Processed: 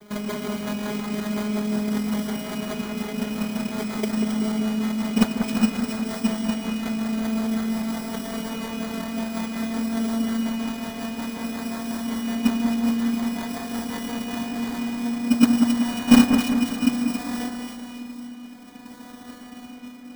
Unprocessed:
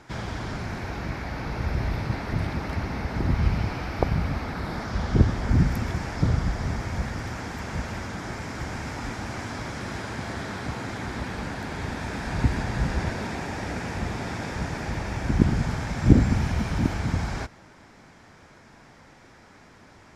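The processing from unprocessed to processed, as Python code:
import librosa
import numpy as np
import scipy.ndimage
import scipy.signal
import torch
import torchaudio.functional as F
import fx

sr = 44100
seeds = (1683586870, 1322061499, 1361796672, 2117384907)

p1 = fx.vocoder_glide(x, sr, note=56, semitones=3)
p2 = fx.low_shelf(p1, sr, hz=200.0, db=11.0)
p3 = p2 + 0.54 * np.pad(p2, (int(3.1 * sr / 1000.0), 0))[:len(p2)]
p4 = fx.over_compress(p3, sr, threshold_db=-35.0, ratio=-0.5)
p5 = p3 + (p4 * 10.0 ** (-2.0 / 20.0))
p6 = fx.mod_noise(p5, sr, seeds[0], snr_db=13)
p7 = fx.rotary_switch(p6, sr, hz=5.5, then_hz=0.6, switch_at_s=14.03)
p8 = fx.sample_hold(p7, sr, seeds[1], rate_hz=2700.0, jitter_pct=0)
y = fx.echo_split(p8, sr, split_hz=2100.0, low_ms=190, high_ms=270, feedback_pct=52, wet_db=-6.0)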